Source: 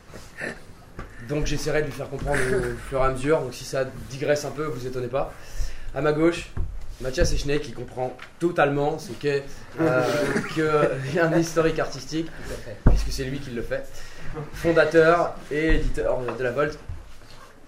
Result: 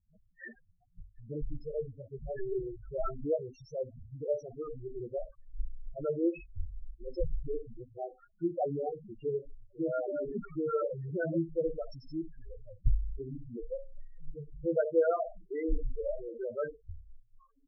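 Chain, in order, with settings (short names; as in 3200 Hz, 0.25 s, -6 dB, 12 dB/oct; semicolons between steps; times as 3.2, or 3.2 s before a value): loudest bins only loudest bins 4; spectral noise reduction 14 dB; 1.57–2.39 notch comb 260 Hz; gain -8.5 dB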